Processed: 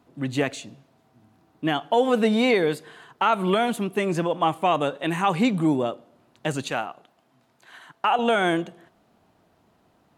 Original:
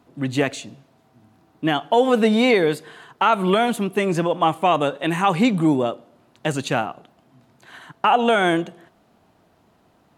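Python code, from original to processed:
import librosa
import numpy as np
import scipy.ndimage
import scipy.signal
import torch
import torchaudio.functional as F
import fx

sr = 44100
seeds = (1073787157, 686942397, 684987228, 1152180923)

y = fx.low_shelf(x, sr, hz=320.0, db=-10.5, at=(6.7, 8.19))
y = y * 10.0 ** (-3.5 / 20.0)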